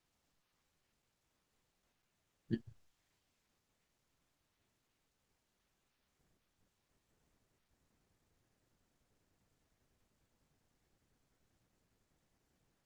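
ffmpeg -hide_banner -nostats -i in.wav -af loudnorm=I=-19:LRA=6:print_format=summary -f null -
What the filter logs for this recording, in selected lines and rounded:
Input Integrated:    -43.7 LUFS
Input True Peak:     -23.0 dBTP
Input LRA:             0.0 LU
Input Threshold:     -54.6 LUFS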